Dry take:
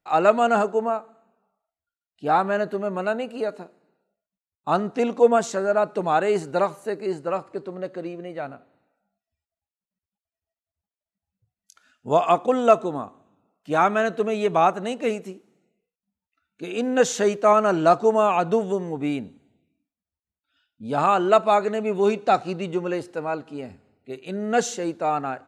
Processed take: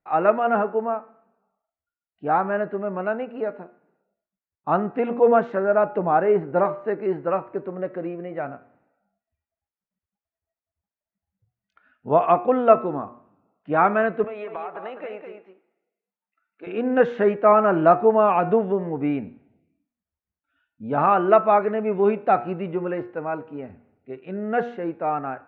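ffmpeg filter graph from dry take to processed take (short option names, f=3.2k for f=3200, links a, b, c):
-filter_complex "[0:a]asettb=1/sr,asplit=3[a][b][c];[a]atrim=end=5.984[d];[b]atrim=start=5.98:end=6.65,asetpts=PTS-STARTPTS,afade=t=in:d=0.004:c=qsin,afade=t=out:st=0.666:d=0.004:c=qsin,highshelf=f=2.4k:g=-11.5,asplit=2[e][f];[f]adelay=17,volume=-14dB[g];[e][g]amix=inputs=2:normalize=0,atrim=end_sample=29547[h];[c]atrim=start=6.646[i];[d][h]acrossfade=d=0.004:c1=hsin:c2=qsin[j];[j][i]acrossfade=d=0.004:c1=qsin:c2=hsin,asettb=1/sr,asplit=3[k][l][m];[k]atrim=end=14.244[n];[l]atrim=start=14.24:end=16.67,asetpts=PTS-STARTPTS,afade=t=in:d=0.004:c=qsin,afade=t=out:st=2.426:d=0.004:c=qsin,highpass=520,acompressor=threshold=-29dB:ratio=12:attack=3.2:release=140:knee=1:detection=peak,aecho=1:1:205:0.447,atrim=end_sample=107163[o];[m]atrim=start=16.666[p];[n][o]acrossfade=d=0.004:c1=hsin:c2=qsin[q];[q][p]acrossfade=d=0.004:c1=qsin:c2=hsin,lowpass=f=2.2k:w=0.5412,lowpass=f=2.2k:w=1.3066,bandreject=f=119.2:t=h:w=4,bandreject=f=238.4:t=h:w=4,bandreject=f=357.6:t=h:w=4,bandreject=f=476.8:t=h:w=4,bandreject=f=596:t=h:w=4,bandreject=f=715.2:t=h:w=4,bandreject=f=834.4:t=h:w=4,bandreject=f=953.6:t=h:w=4,bandreject=f=1.0728k:t=h:w=4,bandreject=f=1.192k:t=h:w=4,bandreject=f=1.3112k:t=h:w=4,bandreject=f=1.4304k:t=h:w=4,bandreject=f=1.5496k:t=h:w=4,bandreject=f=1.6688k:t=h:w=4,bandreject=f=1.788k:t=h:w=4,bandreject=f=1.9072k:t=h:w=4,bandreject=f=2.0264k:t=h:w=4,bandreject=f=2.1456k:t=h:w=4,bandreject=f=2.2648k:t=h:w=4,bandreject=f=2.384k:t=h:w=4,bandreject=f=2.5032k:t=h:w=4,bandreject=f=2.6224k:t=h:w=4,bandreject=f=2.7416k:t=h:w=4,dynaudnorm=f=970:g=11:m=11.5dB,volume=-1dB"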